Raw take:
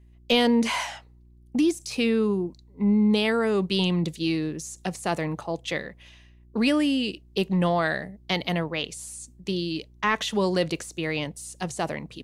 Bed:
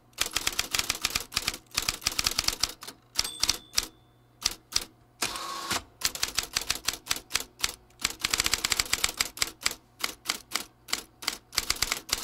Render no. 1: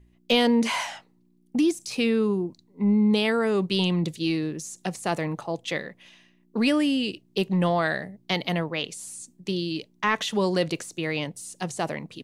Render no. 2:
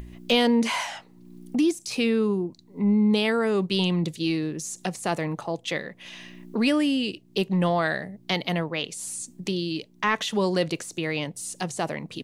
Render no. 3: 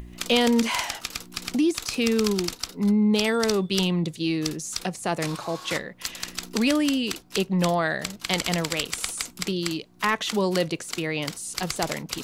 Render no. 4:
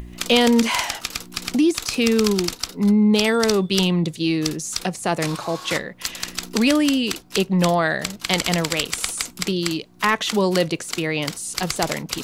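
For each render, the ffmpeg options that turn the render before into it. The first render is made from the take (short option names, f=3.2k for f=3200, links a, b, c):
-af "bandreject=f=60:t=h:w=4,bandreject=f=120:t=h:w=4"
-af "acompressor=mode=upward:threshold=-26dB:ratio=2.5"
-filter_complex "[1:a]volume=-4.5dB[a];[0:a][a]amix=inputs=2:normalize=0"
-af "volume=4.5dB"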